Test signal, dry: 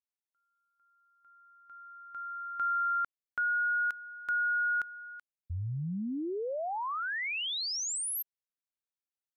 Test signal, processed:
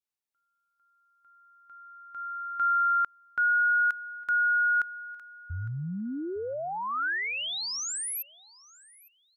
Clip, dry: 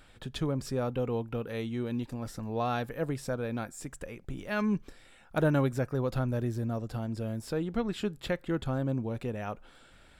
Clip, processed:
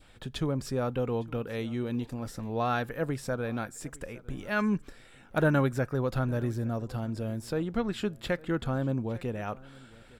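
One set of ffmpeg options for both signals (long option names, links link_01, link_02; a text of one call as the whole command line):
ffmpeg -i in.wav -filter_complex "[0:a]adynamicequalizer=threshold=0.00794:dfrequency=1500:dqfactor=1.8:tfrequency=1500:tqfactor=1.8:attack=5:release=100:ratio=0.375:range=2.5:mode=boostabove:tftype=bell,asplit=2[link_01][link_02];[link_02]aecho=0:1:858|1716:0.075|0.0165[link_03];[link_01][link_03]amix=inputs=2:normalize=0,volume=1dB" out.wav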